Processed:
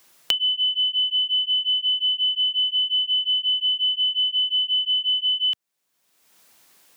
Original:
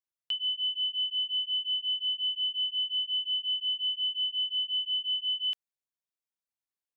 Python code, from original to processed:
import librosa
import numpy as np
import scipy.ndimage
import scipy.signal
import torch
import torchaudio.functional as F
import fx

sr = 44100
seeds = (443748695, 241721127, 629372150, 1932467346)

y = fx.band_squash(x, sr, depth_pct=100)
y = y * librosa.db_to_amplitude(8.0)